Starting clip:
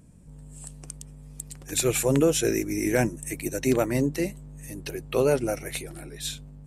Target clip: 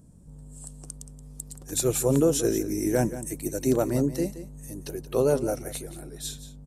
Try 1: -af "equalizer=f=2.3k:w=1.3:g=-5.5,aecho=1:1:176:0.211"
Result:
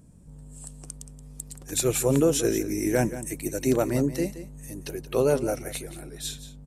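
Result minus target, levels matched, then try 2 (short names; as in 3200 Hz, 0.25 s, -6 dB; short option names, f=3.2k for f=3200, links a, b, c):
2000 Hz band +4.5 dB
-af "equalizer=f=2.3k:w=1.3:g=-13,aecho=1:1:176:0.211"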